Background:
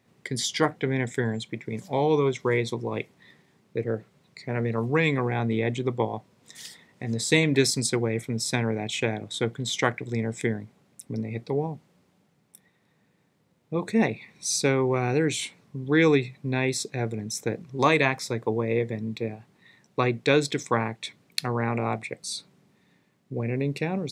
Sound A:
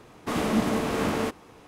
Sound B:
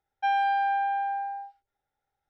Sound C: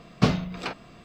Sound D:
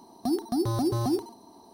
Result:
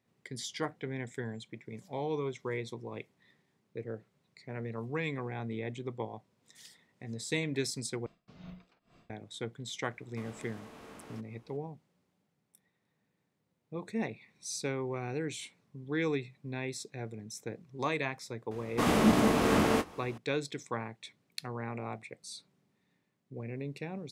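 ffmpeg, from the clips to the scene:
ffmpeg -i bed.wav -i cue0.wav -i cue1.wav -i cue2.wav -filter_complex "[1:a]asplit=2[link_01][link_02];[0:a]volume=-12dB[link_03];[3:a]aeval=exprs='val(0)*pow(10,-27*(0.5-0.5*cos(2*PI*2.2*n/s))/20)':channel_layout=same[link_04];[link_01]acrossover=split=640|7600[link_05][link_06][link_07];[link_05]acompressor=threshold=-37dB:ratio=4[link_08];[link_06]acompressor=threshold=-38dB:ratio=4[link_09];[link_07]acompressor=threshold=-57dB:ratio=4[link_10];[link_08][link_09][link_10]amix=inputs=3:normalize=0[link_11];[link_02]asplit=2[link_12][link_13];[link_13]adelay=24,volume=-11dB[link_14];[link_12][link_14]amix=inputs=2:normalize=0[link_15];[link_03]asplit=2[link_16][link_17];[link_16]atrim=end=8.064[link_18];[link_04]atrim=end=1.04,asetpts=PTS-STARTPTS,volume=-12dB[link_19];[link_17]atrim=start=9.096[link_20];[link_11]atrim=end=1.67,asetpts=PTS-STARTPTS,volume=-15.5dB,afade=type=in:duration=0.004:curve=hsin,afade=type=out:start_time=1.666:duration=0.004:curve=hsin,adelay=9900[link_21];[link_15]atrim=end=1.67,asetpts=PTS-STARTPTS,afade=type=in:duration=0.004:curve=hsin,afade=type=out:start_time=1.666:duration=0.004:curve=hsin,adelay=18510[link_22];[link_18][link_19]acrossfade=duration=0.004:curve1=hsin:curve2=hsin[link_23];[link_23][link_20]acrossfade=duration=0.004:curve1=hsin:curve2=hsin[link_24];[link_24][link_21][link_22]amix=inputs=3:normalize=0" out.wav

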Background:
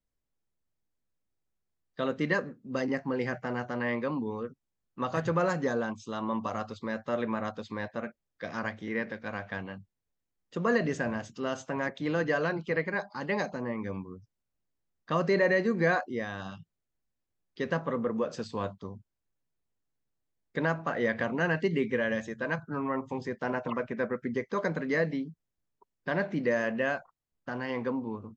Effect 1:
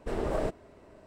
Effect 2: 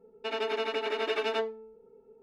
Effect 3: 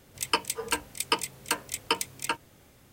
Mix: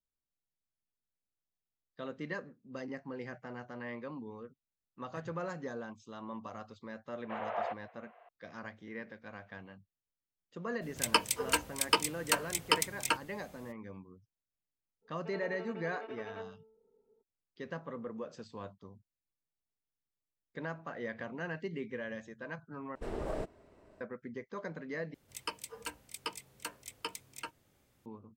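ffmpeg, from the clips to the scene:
ffmpeg -i bed.wav -i cue0.wav -i cue1.wav -i cue2.wav -filter_complex "[1:a]asplit=2[link_01][link_02];[3:a]asplit=2[link_03][link_04];[0:a]volume=-11.5dB[link_05];[link_01]highpass=frequency=570:width_type=q:width=0.5412,highpass=frequency=570:width_type=q:width=1.307,lowpass=frequency=3000:width_type=q:width=0.5176,lowpass=frequency=3000:width_type=q:width=0.7071,lowpass=frequency=3000:width_type=q:width=1.932,afreqshift=74[link_06];[2:a]lowpass=1700[link_07];[link_05]asplit=3[link_08][link_09][link_10];[link_08]atrim=end=22.954[link_11];[link_02]atrim=end=1.06,asetpts=PTS-STARTPTS,volume=-7dB[link_12];[link_09]atrim=start=24.006:end=25.144[link_13];[link_04]atrim=end=2.92,asetpts=PTS-STARTPTS,volume=-13.5dB[link_14];[link_10]atrim=start=28.056[link_15];[link_06]atrim=end=1.06,asetpts=PTS-STARTPTS,volume=-1dB,afade=type=in:duration=0.004:curve=hsin,afade=type=out:start_time=1.056:duration=0.004:curve=hsin,adelay=7230[link_16];[link_03]atrim=end=2.92,asetpts=PTS-STARTPTS,volume=-1dB,afade=type=in:duration=0.02,afade=type=out:start_time=2.9:duration=0.02,adelay=10810[link_17];[link_07]atrim=end=2.22,asetpts=PTS-STARTPTS,volume=-14dB,afade=type=in:duration=0.02,afade=type=out:start_time=2.2:duration=0.02,adelay=15010[link_18];[link_11][link_12]acrossfade=duration=0.004:curve1=hsin:curve2=hsin[link_19];[link_19][link_13]acrossfade=duration=0.004:curve1=hsin:curve2=hsin[link_20];[link_20][link_14]acrossfade=duration=0.004:curve1=hsin:curve2=hsin[link_21];[link_21][link_15]acrossfade=duration=0.004:curve1=hsin:curve2=hsin[link_22];[link_22][link_16][link_17][link_18]amix=inputs=4:normalize=0" out.wav

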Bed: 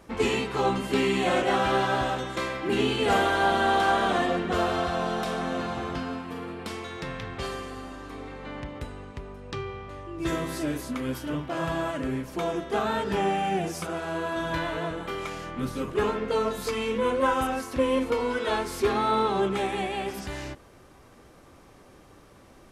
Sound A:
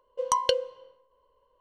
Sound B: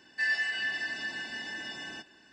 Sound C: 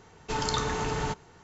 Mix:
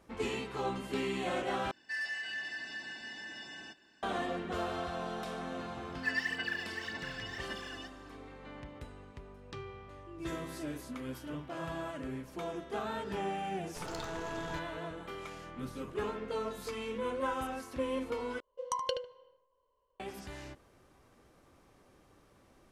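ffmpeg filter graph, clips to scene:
ffmpeg -i bed.wav -i cue0.wav -i cue1.wav -i cue2.wav -filter_complex "[2:a]asplit=2[link_01][link_02];[0:a]volume=-10.5dB[link_03];[link_01]asoftclip=type=tanh:threshold=-25.5dB[link_04];[link_02]aphaser=in_gain=1:out_gain=1:delay=3.1:decay=0.74:speed=1.8:type=sinusoidal[link_05];[3:a]aeval=exprs='if(lt(val(0),0),0.251*val(0),val(0))':channel_layout=same[link_06];[1:a]asplit=2[link_07][link_08];[link_08]adelay=75,lowpass=frequency=2000:poles=1,volume=-4.5dB,asplit=2[link_09][link_10];[link_10]adelay=75,lowpass=frequency=2000:poles=1,volume=0.25,asplit=2[link_11][link_12];[link_12]adelay=75,lowpass=frequency=2000:poles=1,volume=0.25[link_13];[link_07][link_09][link_11][link_13]amix=inputs=4:normalize=0[link_14];[link_03]asplit=3[link_15][link_16][link_17];[link_15]atrim=end=1.714[link_18];[link_04]atrim=end=2.32,asetpts=PTS-STARTPTS,volume=-6dB[link_19];[link_16]atrim=start=4.026:end=18.404[link_20];[link_14]atrim=end=1.6,asetpts=PTS-STARTPTS,volume=-10.5dB[link_21];[link_17]atrim=start=19.996[link_22];[link_05]atrim=end=2.32,asetpts=PTS-STARTPTS,volume=-8.5dB,afade=type=in:duration=0.004:curve=hsin,afade=type=out:start_time=2.316:duration=0.004:curve=hsin,adelay=257985S[link_23];[link_06]atrim=end=1.43,asetpts=PTS-STARTPTS,volume=-12dB,afade=type=in:duration=0.004:curve=hsin,afade=type=out:start_time=1.426:duration=0.004:curve=hsin,adelay=13460[link_24];[link_18][link_19]acrossfade=duration=0.004:curve1=hsin:curve2=hsin[link_25];[link_25][link_20]acrossfade=duration=0.004:curve1=hsin:curve2=hsin[link_26];[link_26][link_21]acrossfade=duration=0.004:curve1=hsin:curve2=hsin[link_27];[link_27][link_22]acrossfade=duration=0.004:curve1=hsin:curve2=hsin[link_28];[link_28][link_23][link_24]amix=inputs=3:normalize=0" out.wav

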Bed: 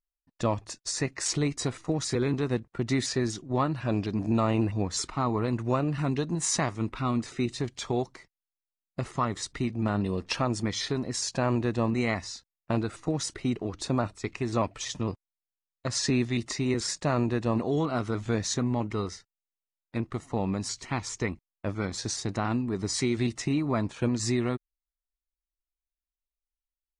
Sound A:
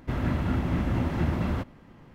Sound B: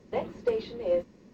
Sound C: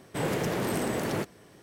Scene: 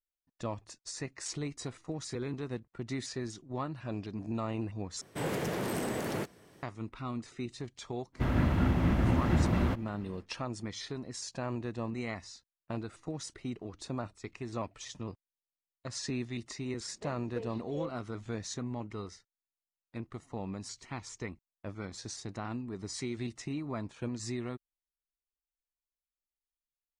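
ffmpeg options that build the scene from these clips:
ffmpeg -i bed.wav -i cue0.wav -i cue1.wav -i cue2.wav -filter_complex "[0:a]volume=-10dB,asplit=2[link_01][link_02];[link_01]atrim=end=5.014[link_03];[3:a]atrim=end=1.62,asetpts=PTS-STARTPTS,volume=-4.5dB[link_04];[link_02]atrim=start=6.626[link_05];[1:a]atrim=end=2.14,asetpts=PTS-STARTPTS,volume=-0.5dB,afade=type=in:duration=0.1,afade=type=out:start_time=2.04:duration=0.1,adelay=8120[link_06];[2:a]atrim=end=1.33,asetpts=PTS-STARTPTS,volume=-13.5dB,afade=type=in:duration=0.004:curve=hsin,afade=type=out:start_time=1.326:duration=0.004:curve=hsin,adelay=16890[link_07];[link_03][link_04]acrossfade=duration=0.004:curve1=hsin:curve2=hsin[link_08];[link_08][link_05]acrossfade=duration=0.004:curve1=hsin:curve2=hsin[link_09];[link_09][link_06][link_07]amix=inputs=3:normalize=0" out.wav

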